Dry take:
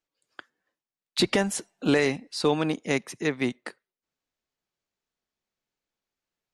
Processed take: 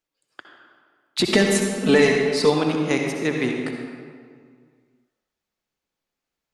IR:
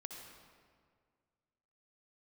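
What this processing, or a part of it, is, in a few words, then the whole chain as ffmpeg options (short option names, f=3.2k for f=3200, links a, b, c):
stairwell: -filter_complex "[1:a]atrim=start_sample=2205[a];[0:a][a]afir=irnorm=-1:irlink=0,asettb=1/sr,asplit=3[b][c][d];[b]atrim=end=1.324[e];[c]atrim=start=1.32:end=2.5,asetpts=PTS-STARTPTS,afade=t=in:d=0.004:c=qsin,afade=t=out:st=1.176:d=0.004:c=qsin,aecho=1:1:4.6:0.98,atrim=end_sample=52038[f];[d]atrim=start=2.496[g];[e][f]acrossfade=d=0.004:c1=hsin:c2=qsin[h];[h][g]acrossfade=d=0.004:c1=qsin:c2=hsin,volume=7.5dB"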